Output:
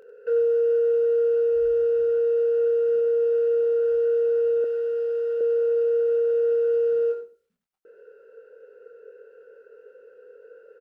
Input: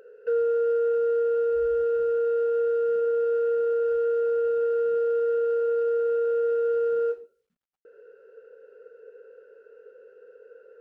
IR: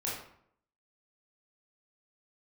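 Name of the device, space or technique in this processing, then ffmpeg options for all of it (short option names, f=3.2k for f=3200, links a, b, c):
slapback doubling: -filter_complex "[0:a]asplit=3[a][b][c];[b]adelay=24,volume=-5dB[d];[c]adelay=94,volume=-10.5dB[e];[a][d][e]amix=inputs=3:normalize=0,asettb=1/sr,asplit=3[f][g][h];[f]atrim=end=4.644[i];[g]atrim=start=4.64:end=5.41,asetpts=PTS-STARTPTS,afade=t=in:d=0.004:c=qsin,afade=t=out:st=0.766:d=0.004:c=qsin,highpass=f=590:p=1[j];[h]atrim=start=5.406[k];[i][j]acrossfade=d=0.004:c1=hsin:c2=qsin[l];[l][k]acrossfade=d=0.004:c1=qsin:c2=hsin"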